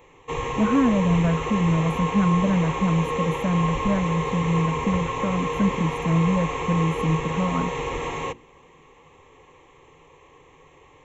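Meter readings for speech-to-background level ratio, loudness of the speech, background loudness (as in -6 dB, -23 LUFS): 4.0 dB, -24.0 LUFS, -28.0 LUFS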